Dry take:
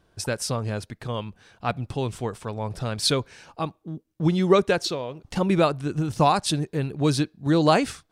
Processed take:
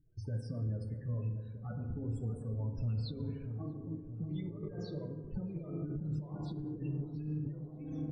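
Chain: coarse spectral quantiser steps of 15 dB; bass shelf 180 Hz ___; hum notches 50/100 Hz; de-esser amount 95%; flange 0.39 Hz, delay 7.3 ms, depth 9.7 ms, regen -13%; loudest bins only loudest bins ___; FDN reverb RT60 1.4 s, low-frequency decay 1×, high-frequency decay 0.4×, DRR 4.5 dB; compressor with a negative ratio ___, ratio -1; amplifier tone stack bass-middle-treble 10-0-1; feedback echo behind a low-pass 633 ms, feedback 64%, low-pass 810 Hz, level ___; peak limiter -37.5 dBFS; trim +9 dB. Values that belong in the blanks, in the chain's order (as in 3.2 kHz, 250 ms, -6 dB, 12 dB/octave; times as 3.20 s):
-2.5 dB, 16, -31 dBFS, -10 dB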